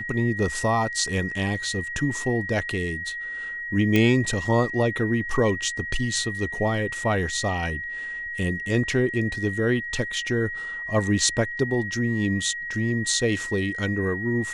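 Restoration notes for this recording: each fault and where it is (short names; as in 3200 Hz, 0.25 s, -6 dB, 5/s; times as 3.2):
tone 1900 Hz -30 dBFS
3.96 pop -8 dBFS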